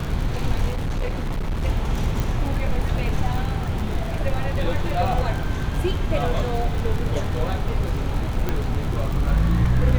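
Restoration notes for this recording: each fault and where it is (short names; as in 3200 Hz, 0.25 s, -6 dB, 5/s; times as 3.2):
crackle 66/s -26 dBFS
0.7–1.66 clipped -20.5 dBFS
2.2 pop
8.49 pop -10 dBFS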